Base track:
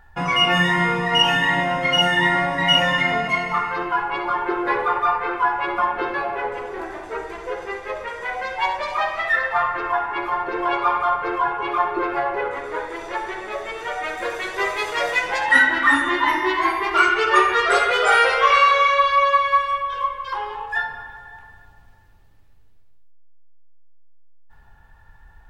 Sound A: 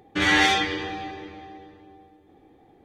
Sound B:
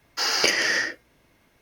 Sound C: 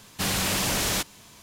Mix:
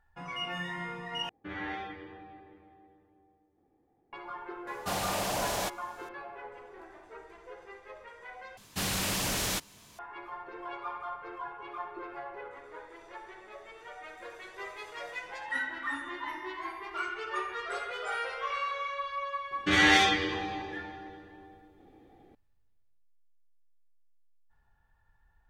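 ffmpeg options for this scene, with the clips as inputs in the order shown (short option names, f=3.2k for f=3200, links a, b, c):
-filter_complex "[1:a]asplit=2[a][b];[3:a]asplit=2[c][d];[0:a]volume=-19dB[e];[a]lowpass=1.7k[f];[c]equalizer=f=690:t=o:w=1.1:g=13.5[g];[b]bandreject=f=960:w=7.5[h];[e]asplit=3[i][j][k];[i]atrim=end=1.294[l];[f]atrim=end=2.84,asetpts=PTS-STARTPTS,volume=-16dB[m];[j]atrim=start=4.126:end=8.574[n];[d]atrim=end=1.42,asetpts=PTS-STARTPTS,volume=-5.5dB[o];[k]atrim=start=9.986[p];[g]atrim=end=1.42,asetpts=PTS-STARTPTS,volume=-10dB,afade=t=in:d=0.004:c=hsin,afade=t=out:st=1.416:d=0.004:c=hsin,adelay=4670[q];[h]atrim=end=2.84,asetpts=PTS-STARTPTS,volume=-2.5dB,afade=t=in:d=0.004:c=hsin,afade=t=out:st=2.836:d=0.004:c=hsin,adelay=19510[r];[l][m]acrossfade=d=0.004:c1=hsin:c2=hsin[s];[s][n]acrossfade=d=0.004:c1=hsin:c2=hsin[t];[t][o]acrossfade=d=0.004:c1=hsin:c2=hsin[u];[u][p]acrossfade=d=0.004:c1=hsin:c2=hsin[v];[v][q][r]amix=inputs=3:normalize=0"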